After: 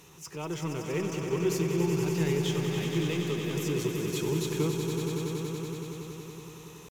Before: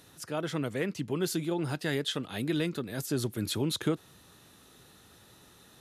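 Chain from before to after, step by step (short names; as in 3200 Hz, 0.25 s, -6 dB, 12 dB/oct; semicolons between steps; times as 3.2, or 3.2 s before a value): G.711 law mismatch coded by mu; ripple EQ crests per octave 0.75, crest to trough 11 dB; tempo 0.84×; swelling echo 94 ms, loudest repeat 5, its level -8 dB; on a send at -18 dB: reverb RT60 0.50 s, pre-delay 5 ms; on the sum: gain -5 dB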